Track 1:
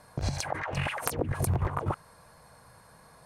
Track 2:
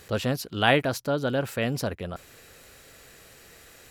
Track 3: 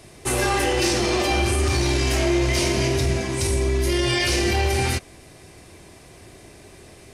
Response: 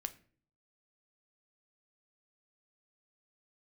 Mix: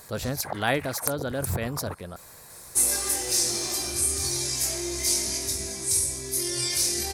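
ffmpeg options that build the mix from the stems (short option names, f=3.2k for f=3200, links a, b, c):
-filter_complex "[0:a]volume=0dB[a];[1:a]volume=-4.5dB,asplit=2[b][c];[2:a]bass=f=250:g=0,treble=f=4k:g=13,flanger=delay=19.5:depth=4:speed=0.35,adelay=2500,volume=-11.5dB[d];[c]apad=whole_len=143722[e];[a][e]sidechaincompress=threshold=-41dB:ratio=3:attack=5.3:release=110[f];[f][b][d]amix=inputs=3:normalize=0,equalizer=f=2.9k:t=o:w=0.32:g=-10,crystalizer=i=2:c=0"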